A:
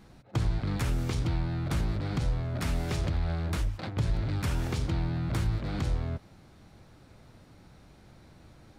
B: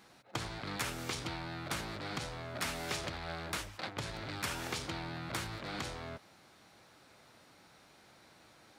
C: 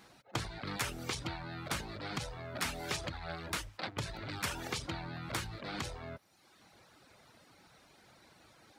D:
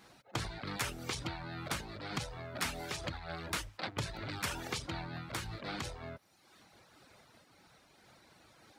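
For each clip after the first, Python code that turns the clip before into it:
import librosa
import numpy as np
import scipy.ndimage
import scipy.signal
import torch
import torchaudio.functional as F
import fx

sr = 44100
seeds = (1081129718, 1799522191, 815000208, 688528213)

y1 = fx.highpass(x, sr, hz=930.0, slope=6)
y1 = y1 * librosa.db_to_amplitude(2.5)
y2 = fx.dereverb_blind(y1, sr, rt60_s=0.96)
y2 = fx.low_shelf(y2, sr, hz=110.0, db=4.5)
y2 = y2 * librosa.db_to_amplitude(1.5)
y3 = fx.am_noise(y2, sr, seeds[0], hz=5.7, depth_pct=55)
y3 = y3 * librosa.db_to_amplitude(2.5)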